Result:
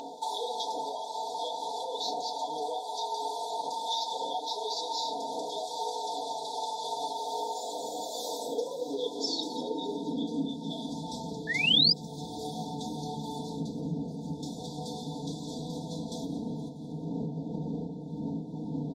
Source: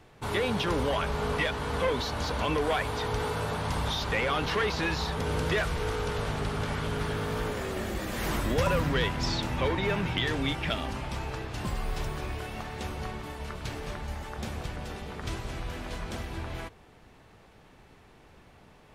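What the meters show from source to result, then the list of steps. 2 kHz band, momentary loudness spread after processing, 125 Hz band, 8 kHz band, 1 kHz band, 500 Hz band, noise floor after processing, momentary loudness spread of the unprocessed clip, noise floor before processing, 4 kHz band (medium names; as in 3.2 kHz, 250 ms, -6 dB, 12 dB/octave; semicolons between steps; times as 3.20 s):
-8.0 dB, 6 LU, -8.0 dB, +1.0 dB, +0.5 dB, -4.5 dB, -41 dBFS, 10 LU, -56 dBFS, +4.5 dB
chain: wind noise 230 Hz -25 dBFS; bass shelf 79 Hz -7 dB; high-pass sweep 750 Hz -> 150 Hz, 7.58–11.23 s; brick-wall FIR band-stop 980–3300 Hz; feedback delay 172 ms, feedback 45%, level -15.5 dB; compression 5:1, threshold -41 dBFS, peak gain reduction 28.5 dB; FDN reverb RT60 0.38 s, low-frequency decay 1.05×, high-frequency decay 0.55×, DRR -0.5 dB; painted sound rise, 11.47–11.93 s, 1.7–5.1 kHz -33 dBFS; comb 4.3 ms, depth 79%; upward compressor, threshold -42 dBFS; high-order bell 4.7 kHz +9 dB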